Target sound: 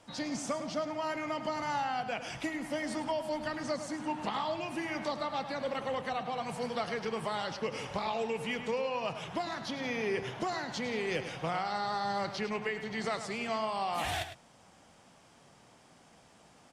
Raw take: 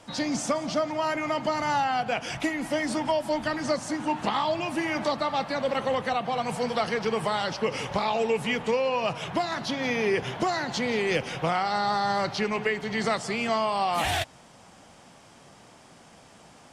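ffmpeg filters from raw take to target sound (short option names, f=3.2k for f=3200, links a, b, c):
-filter_complex "[0:a]asplit=2[a][b];[b]adelay=105,volume=-10dB,highshelf=f=4k:g=-2.36[c];[a][c]amix=inputs=2:normalize=0,volume=-8dB"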